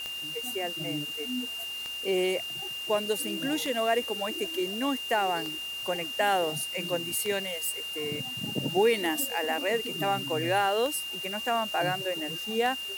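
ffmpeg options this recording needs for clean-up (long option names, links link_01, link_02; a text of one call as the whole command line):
ffmpeg -i in.wav -af "adeclick=threshold=4,bandreject=frequency=2800:width=30,afwtdn=0.005" out.wav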